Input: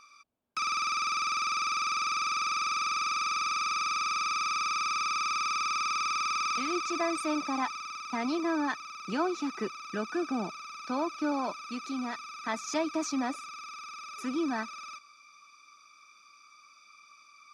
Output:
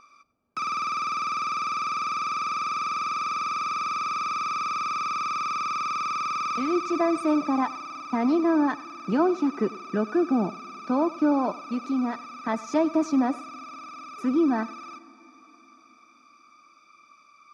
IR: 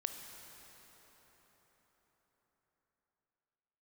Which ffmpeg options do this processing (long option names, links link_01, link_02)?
-filter_complex "[0:a]tiltshelf=frequency=1500:gain=8.5,asplit=2[link_01][link_02];[1:a]atrim=start_sample=2205,asetrate=48510,aresample=44100,adelay=98[link_03];[link_02][link_03]afir=irnorm=-1:irlink=0,volume=-17.5dB[link_04];[link_01][link_04]amix=inputs=2:normalize=0,volume=1.5dB"